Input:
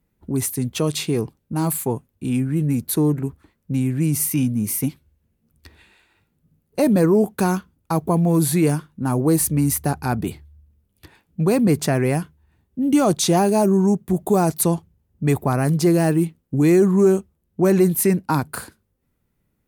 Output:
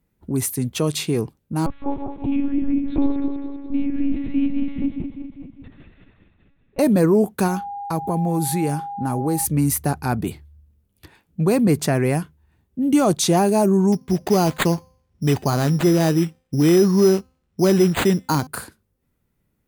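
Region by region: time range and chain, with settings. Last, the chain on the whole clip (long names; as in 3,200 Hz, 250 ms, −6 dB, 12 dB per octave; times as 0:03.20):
0:01.66–0:06.79: feedback delay that plays each chunk backwards 102 ms, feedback 75%, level −7 dB + high-shelf EQ 3,000 Hz −10 dB + one-pitch LPC vocoder at 8 kHz 280 Hz
0:07.47–0:09.44: downward compressor 2 to 1, threshold −21 dBFS + steady tone 810 Hz −28 dBFS
0:13.92–0:18.47: hum removal 258.3 Hz, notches 12 + bad sample-rate conversion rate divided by 8×, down none, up hold
whole clip: no processing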